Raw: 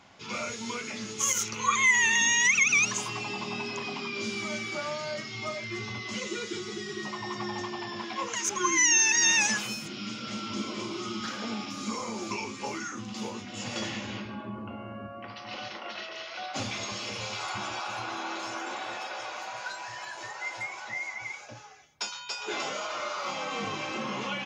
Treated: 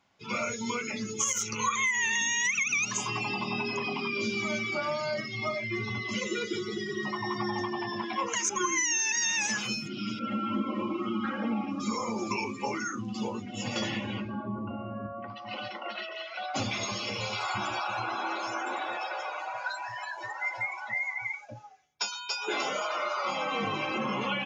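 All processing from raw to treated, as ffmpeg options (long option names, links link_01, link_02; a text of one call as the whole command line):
ffmpeg -i in.wav -filter_complex "[0:a]asettb=1/sr,asplit=3[link_01][link_02][link_03];[link_01]atrim=end=10.194[link_04];[link_02]atrim=start=10.19:end=11.8,asetpts=PTS-STARTPTS,afade=type=in:duration=0.004:curve=qsin,afade=type=out:start_time=1.606:duration=0.004:curve=qsin,acrossover=split=3100[link_05][link_06];[link_06]acompressor=threshold=-54dB:ratio=4:attack=1:release=60[link_07];[link_05][link_07]amix=inputs=2:normalize=0,highshelf=frequency=3300:gain=-4.5,aecho=1:1:3.7:0.68,atrim=end_sample=71001[link_08];[link_03]atrim=start=11.796[link_09];[link_04][link_08]acrossfade=duration=0.004:curve1=hsin:curve2=qsin[link_10];[link_10][link_09]acrossfade=duration=0.004:curve1=qsin:curve2=hsin,afftdn=noise_reduction=18:noise_floor=-39,bandreject=frequency=82.86:width_type=h:width=4,bandreject=frequency=165.72:width_type=h:width=4,bandreject=frequency=248.58:width_type=h:width=4,bandreject=frequency=331.44:width_type=h:width=4,bandreject=frequency=414.3:width_type=h:width=4,bandreject=frequency=497.16:width_type=h:width=4,bandreject=frequency=580.02:width_type=h:width=4,bandreject=frequency=662.88:width_type=h:width=4,bandreject=frequency=745.74:width_type=h:width=4,acompressor=threshold=-29dB:ratio=12,volume=4dB" out.wav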